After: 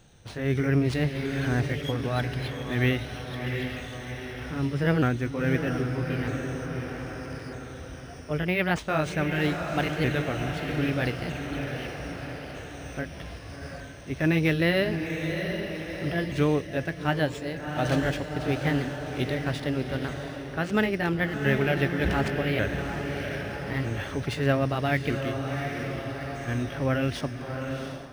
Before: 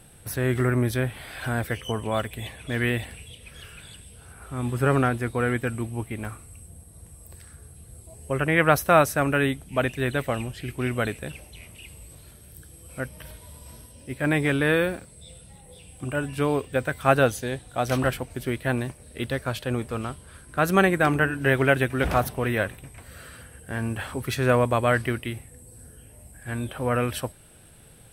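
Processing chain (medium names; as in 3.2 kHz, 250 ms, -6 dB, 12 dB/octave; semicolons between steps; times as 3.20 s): sawtooth pitch modulation +3 st, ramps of 1255 ms; treble shelf 5.6 kHz -4.5 dB; echo that smears into a reverb 730 ms, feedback 49%, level -7 dB; level rider gain up to 7.5 dB; dynamic bell 930 Hz, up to -8 dB, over -33 dBFS, Q 0.74; decimation joined by straight lines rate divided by 3×; trim -4 dB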